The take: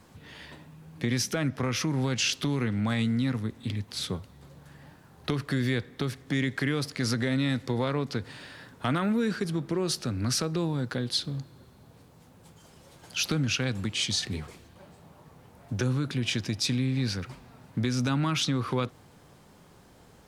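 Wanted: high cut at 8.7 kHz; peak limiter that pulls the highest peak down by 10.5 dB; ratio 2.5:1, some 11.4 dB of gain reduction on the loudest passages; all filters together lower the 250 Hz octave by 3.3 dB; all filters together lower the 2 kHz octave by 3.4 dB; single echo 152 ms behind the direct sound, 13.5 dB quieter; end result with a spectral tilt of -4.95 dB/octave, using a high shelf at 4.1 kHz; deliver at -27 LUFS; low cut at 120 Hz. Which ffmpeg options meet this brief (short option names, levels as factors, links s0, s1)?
-af "highpass=120,lowpass=8700,equalizer=f=250:t=o:g=-3.5,equalizer=f=2000:t=o:g=-3.5,highshelf=f=4100:g=-3.5,acompressor=threshold=0.00631:ratio=2.5,alimiter=level_in=3.16:limit=0.0631:level=0:latency=1,volume=0.316,aecho=1:1:152:0.211,volume=7.5"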